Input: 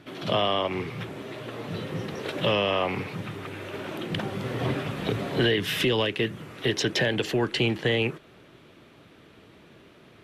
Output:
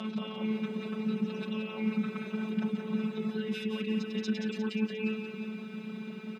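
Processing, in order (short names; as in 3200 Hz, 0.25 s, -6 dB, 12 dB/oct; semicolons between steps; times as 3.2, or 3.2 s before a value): reverse echo 0.382 s -16 dB; robotiser 217 Hz; air absorption 64 m; on a send at -7 dB: reverb, pre-delay 55 ms; on the sum: limiter -15 dBFS, peak gain reduction 5.5 dB; reverse; compressor 8:1, threshold -42 dBFS, peak gain reduction 20 dB; reverse; reverb removal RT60 0.91 s; comb 5.4 ms, depth 76%; tempo 1.6×; HPF 120 Hz 24 dB/oct; bell 200 Hz +13 dB 0.56 oct; lo-fi delay 0.177 s, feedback 55%, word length 13-bit, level -6.5 dB; gain +7.5 dB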